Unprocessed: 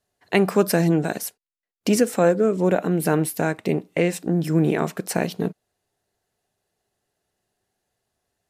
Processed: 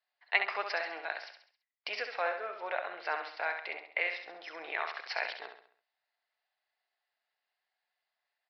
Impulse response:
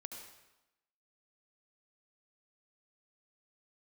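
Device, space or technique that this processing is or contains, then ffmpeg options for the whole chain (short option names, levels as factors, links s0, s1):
musical greeting card: -filter_complex "[0:a]asettb=1/sr,asplit=3[s0][s1][s2];[s0]atrim=end=4.794[s3];[s1]atrim=start=4.79:end=5.22,asetpts=PTS-STARTPTS,afade=t=in:d=0.004:c=qsin,afade=t=out:st=0.426:d=0.004:c=qsin,aemphasis=mode=production:type=bsi[s4];[s2]atrim=start=5.216[s5];[s3][s4]acrossfade=d=0.004:c1=hsin:c2=qsin[s6];[s6][s5]acrossfade=d=0.004:c1=qsin:c2=hsin,aecho=1:1:67|134|201|268|335:0.447|0.197|0.0865|0.0381|0.0167,aresample=11025,aresample=44100,highpass=f=740:w=0.5412,highpass=f=740:w=1.3066,equalizer=f=2100:t=o:w=0.45:g=7,volume=0.447"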